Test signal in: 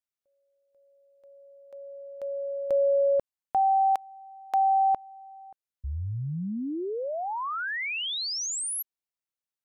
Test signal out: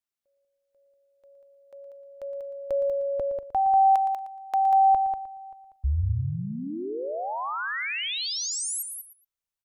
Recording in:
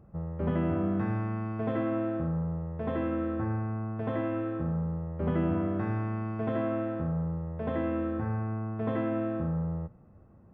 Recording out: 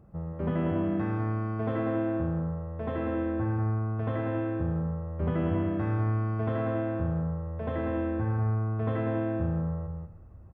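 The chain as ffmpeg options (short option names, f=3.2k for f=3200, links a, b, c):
-filter_complex "[0:a]asplit=2[a][b];[b]aecho=0:1:191:0.473[c];[a][c]amix=inputs=2:normalize=0,asubboost=boost=4.5:cutoff=87,asplit=2[d][e];[e]aecho=0:1:116|232:0.237|0.0474[f];[d][f]amix=inputs=2:normalize=0"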